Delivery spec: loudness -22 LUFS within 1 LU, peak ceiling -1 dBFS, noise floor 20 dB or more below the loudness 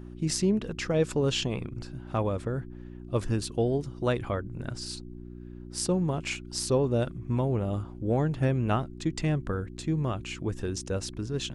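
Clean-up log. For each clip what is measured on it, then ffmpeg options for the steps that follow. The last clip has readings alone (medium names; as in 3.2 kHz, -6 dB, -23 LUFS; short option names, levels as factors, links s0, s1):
hum 60 Hz; highest harmonic 360 Hz; hum level -40 dBFS; loudness -30.0 LUFS; peak level -12.0 dBFS; loudness target -22.0 LUFS
-> -af "bandreject=f=60:t=h:w=4,bandreject=f=120:t=h:w=4,bandreject=f=180:t=h:w=4,bandreject=f=240:t=h:w=4,bandreject=f=300:t=h:w=4,bandreject=f=360:t=h:w=4"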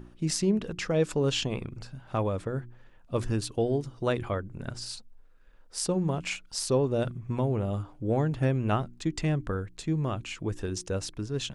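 hum not found; loudness -30.0 LUFS; peak level -12.0 dBFS; loudness target -22.0 LUFS
-> -af "volume=2.51"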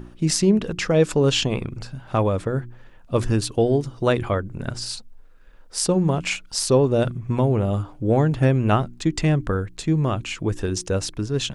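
loudness -22.0 LUFS; peak level -4.0 dBFS; noise floor -47 dBFS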